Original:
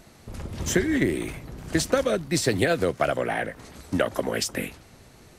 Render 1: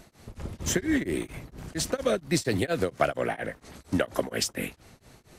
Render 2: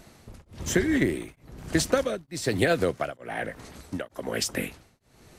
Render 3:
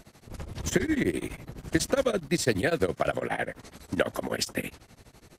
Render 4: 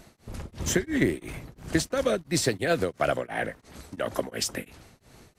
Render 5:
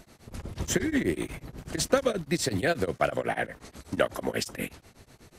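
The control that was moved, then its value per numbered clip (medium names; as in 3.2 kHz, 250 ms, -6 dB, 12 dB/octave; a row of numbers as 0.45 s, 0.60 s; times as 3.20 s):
tremolo of two beating tones, nulls at: 4.3 Hz, 1.1 Hz, 12 Hz, 2.9 Hz, 8.2 Hz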